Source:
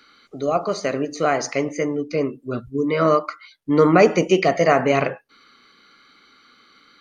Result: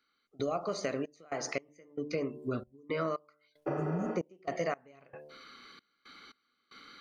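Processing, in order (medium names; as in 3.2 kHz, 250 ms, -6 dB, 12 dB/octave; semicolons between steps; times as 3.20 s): 3.81–4.47 s: resonant high shelf 1.8 kHz -9 dB, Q 1.5; 3.70–4.06 s: spectral replace 240–6200 Hz after; de-hum 74.34 Hz, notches 14; compression 6:1, threshold -31 dBFS, peak gain reduction 18 dB; trance gate "...xxxxx..xx" 114 bpm -24 dB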